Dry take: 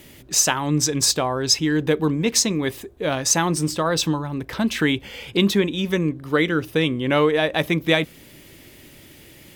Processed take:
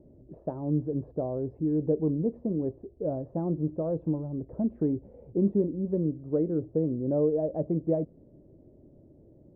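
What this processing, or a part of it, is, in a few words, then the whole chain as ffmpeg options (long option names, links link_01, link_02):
under water: -filter_complex "[0:a]asettb=1/sr,asplit=3[link_01][link_02][link_03];[link_01]atrim=end=6.954[link_04];[link_02]atrim=start=6.95:end=7.56,asetpts=PTS-STARTPTS,afade=type=in:duration=0.004:curve=qsin,afade=type=out:start_time=0.606:duration=0.004:curve=qsin,highshelf=frequency=2100:gain=-9.5[link_05];[link_03]atrim=start=7.556[link_06];[link_04][link_05]acrossfade=duration=0.004:curve1=hsin:curve2=qsin[link_07];[link_07][link_06]acrossfade=duration=0.004:curve1=qsin:curve2=hsin,lowpass=frequency=560:width=0.5412,lowpass=frequency=560:width=1.3066,equalizer=frequency=630:width_type=o:width=0.36:gain=5.5,volume=-6dB"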